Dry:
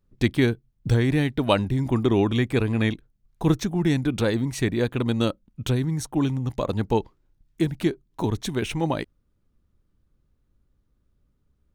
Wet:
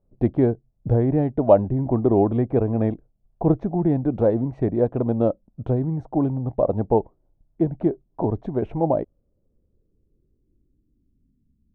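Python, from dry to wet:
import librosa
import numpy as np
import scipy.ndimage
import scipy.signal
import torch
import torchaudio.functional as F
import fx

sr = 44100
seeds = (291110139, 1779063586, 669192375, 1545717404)

y = fx.filter_sweep_lowpass(x, sr, from_hz=670.0, to_hz=230.0, start_s=8.85, end_s=11.59, q=3.3)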